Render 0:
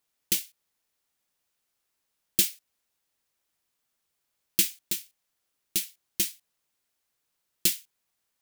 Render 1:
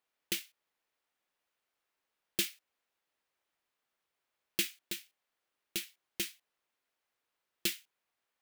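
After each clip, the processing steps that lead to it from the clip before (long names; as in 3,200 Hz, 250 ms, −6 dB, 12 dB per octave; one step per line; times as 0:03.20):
bass and treble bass −10 dB, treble −12 dB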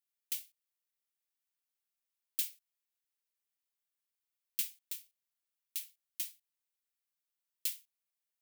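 first-order pre-emphasis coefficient 0.9
level −3 dB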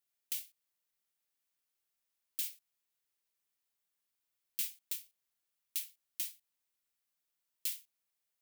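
brickwall limiter −26 dBFS, peak gain reduction 8 dB
level +3.5 dB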